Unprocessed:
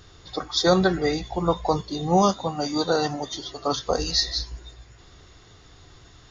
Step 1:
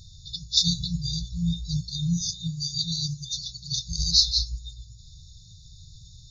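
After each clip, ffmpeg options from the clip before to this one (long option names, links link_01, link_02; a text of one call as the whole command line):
ffmpeg -i in.wav -af "afftfilt=real='re*(1-between(b*sr/4096,180,3500))':imag='im*(1-between(b*sr/4096,180,3500))':win_size=4096:overlap=0.75,volume=4dB" out.wav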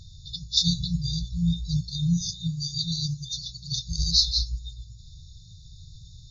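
ffmpeg -i in.wav -af "highshelf=frequency=5800:gain=-9.5,volume=2dB" out.wav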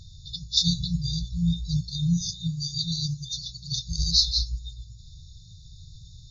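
ffmpeg -i in.wav -af anull out.wav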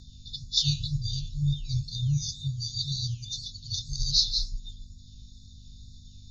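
ffmpeg -i in.wav -af "afreqshift=-27,aeval=exprs='val(0)+0.00398*(sin(2*PI*50*n/s)+sin(2*PI*2*50*n/s)/2+sin(2*PI*3*50*n/s)/3+sin(2*PI*4*50*n/s)/4+sin(2*PI*5*50*n/s)/5)':channel_layout=same,flanger=delay=7.8:depth=5.4:regen=-88:speed=2:shape=sinusoidal,volume=2dB" out.wav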